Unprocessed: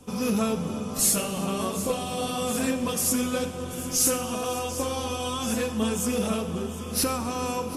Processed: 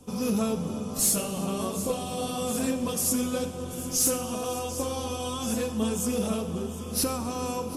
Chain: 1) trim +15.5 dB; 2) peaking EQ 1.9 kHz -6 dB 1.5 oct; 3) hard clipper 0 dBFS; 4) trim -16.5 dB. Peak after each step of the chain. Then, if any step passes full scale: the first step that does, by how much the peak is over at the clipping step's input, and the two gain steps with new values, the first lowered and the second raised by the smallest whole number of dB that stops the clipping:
+2.5 dBFS, +3.0 dBFS, 0.0 dBFS, -16.5 dBFS; step 1, 3.0 dB; step 1 +12.5 dB, step 4 -13.5 dB

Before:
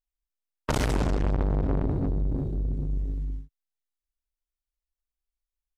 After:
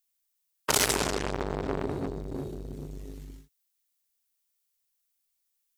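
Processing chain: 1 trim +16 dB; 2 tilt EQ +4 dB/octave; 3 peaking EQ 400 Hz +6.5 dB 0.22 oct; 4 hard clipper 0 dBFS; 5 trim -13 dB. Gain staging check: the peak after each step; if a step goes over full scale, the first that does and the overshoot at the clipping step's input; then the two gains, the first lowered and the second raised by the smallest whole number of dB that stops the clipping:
+5.0 dBFS, +9.0 dBFS, +9.0 dBFS, 0.0 dBFS, -13.0 dBFS; step 1, 9.0 dB; step 1 +7 dB, step 5 -4 dB

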